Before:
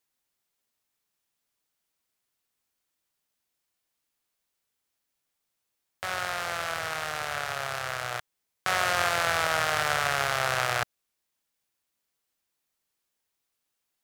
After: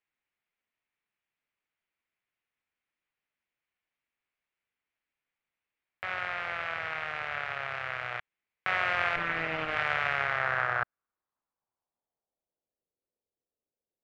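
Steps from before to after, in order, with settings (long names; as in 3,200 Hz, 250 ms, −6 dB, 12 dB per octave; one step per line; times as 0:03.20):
0:09.16–0:09.76: lower of the sound and its delayed copy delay 6.6 ms
low-pass filter sweep 2,300 Hz → 510 Hz, 0:10.09–0:12.86
level −6 dB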